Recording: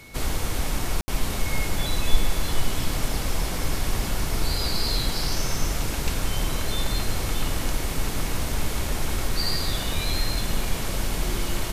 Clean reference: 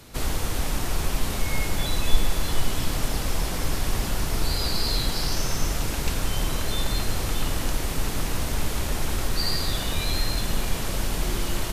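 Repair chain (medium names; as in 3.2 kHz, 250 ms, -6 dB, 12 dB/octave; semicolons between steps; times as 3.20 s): band-stop 2.2 kHz, Q 30; room tone fill 1.01–1.08 s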